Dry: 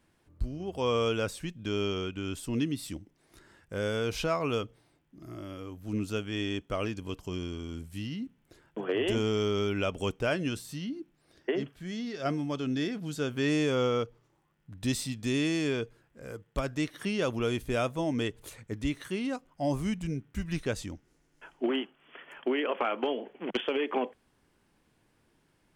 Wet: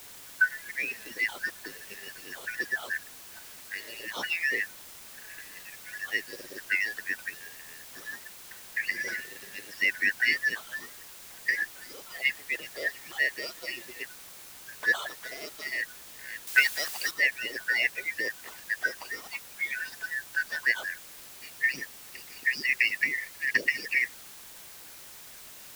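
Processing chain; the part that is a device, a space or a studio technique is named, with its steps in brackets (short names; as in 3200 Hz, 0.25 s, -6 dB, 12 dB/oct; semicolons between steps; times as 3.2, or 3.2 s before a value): median-filter separation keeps percussive; split-band scrambled radio (four-band scrambler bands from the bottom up 3142; BPF 390–2900 Hz; white noise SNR 14 dB); 16.47–17.11 high shelf 2000 Hz +10 dB; gain +7.5 dB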